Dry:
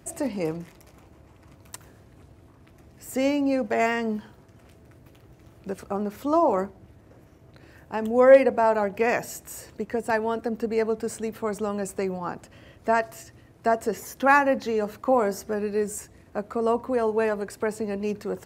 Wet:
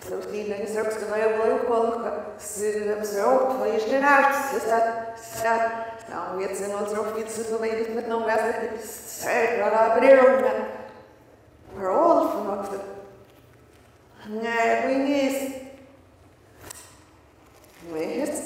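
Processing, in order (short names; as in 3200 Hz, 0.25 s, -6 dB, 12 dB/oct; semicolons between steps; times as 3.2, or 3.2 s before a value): whole clip reversed; HPF 78 Hz; bell 170 Hz -15 dB 0.64 oct; reverb RT60 1.2 s, pre-delay 20 ms, DRR 0.5 dB; backwards sustainer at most 120 dB/s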